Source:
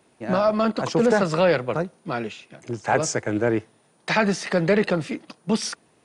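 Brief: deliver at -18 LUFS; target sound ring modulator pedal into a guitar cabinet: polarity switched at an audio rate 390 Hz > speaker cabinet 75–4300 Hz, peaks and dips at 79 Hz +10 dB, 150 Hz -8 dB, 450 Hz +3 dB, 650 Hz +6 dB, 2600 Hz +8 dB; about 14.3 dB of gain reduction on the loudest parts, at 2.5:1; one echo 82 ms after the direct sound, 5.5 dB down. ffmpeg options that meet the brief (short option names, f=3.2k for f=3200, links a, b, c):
-af "acompressor=threshold=-37dB:ratio=2.5,aecho=1:1:82:0.531,aeval=exprs='val(0)*sgn(sin(2*PI*390*n/s))':c=same,highpass=75,equalizer=f=79:t=q:w=4:g=10,equalizer=f=150:t=q:w=4:g=-8,equalizer=f=450:t=q:w=4:g=3,equalizer=f=650:t=q:w=4:g=6,equalizer=f=2.6k:t=q:w=4:g=8,lowpass=f=4.3k:w=0.5412,lowpass=f=4.3k:w=1.3066,volume=15dB"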